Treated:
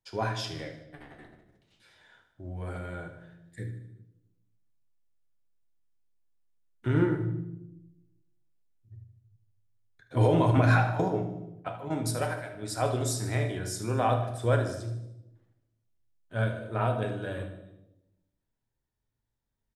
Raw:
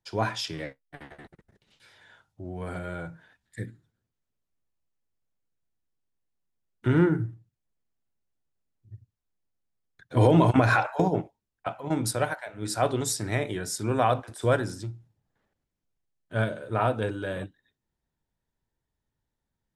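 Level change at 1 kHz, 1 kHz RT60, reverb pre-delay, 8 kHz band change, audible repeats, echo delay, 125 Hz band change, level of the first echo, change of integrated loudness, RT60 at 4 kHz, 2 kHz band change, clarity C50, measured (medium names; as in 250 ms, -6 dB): -3.0 dB, 0.80 s, 8 ms, -4.0 dB, 5, 76 ms, 0.0 dB, -12.0 dB, -2.5 dB, 0.75 s, -3.5 dB, 7.5 dB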